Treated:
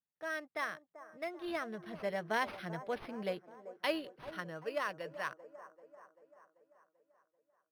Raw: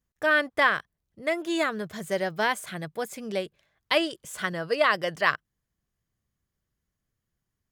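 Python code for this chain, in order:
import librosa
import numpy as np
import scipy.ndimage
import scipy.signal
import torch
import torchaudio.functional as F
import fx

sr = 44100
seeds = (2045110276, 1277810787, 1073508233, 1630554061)

y = fx.doppler_pass(x, sr, speed_mps=14, closest_m=12.0, pass_at_s=2.86)
y = scipy.signal.sosfilt(scipy.signal.butter(4, 130.0, 'highpass', fs=sr, output='sos'), y)
y = fx.notch(y, sr, hz=380.0, q=12.0)
y = fx.echo_wet_bandpass(y, sr, ms=389, feedback_pct=57, hz=590.0, wet_db=-12.5)
y = np.interp(np.arange(len(y)), np.arange(len(y))[::6], y[::6])
y = y * 10.0 ** (-6.0 / 20.0)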